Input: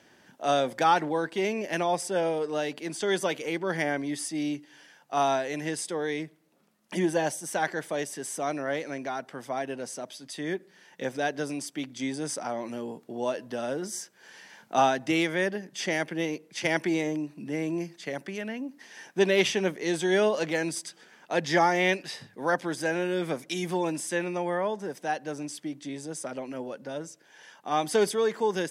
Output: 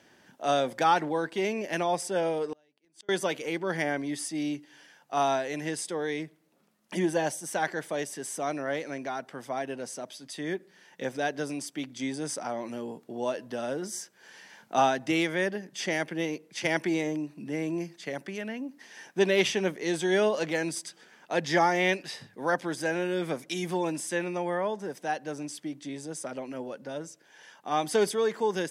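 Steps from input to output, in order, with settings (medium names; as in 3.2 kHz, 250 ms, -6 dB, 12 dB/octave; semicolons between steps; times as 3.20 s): 2.52–3.09 s: inverted gate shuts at -25 dBFS, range -36 dB; trim -1 dB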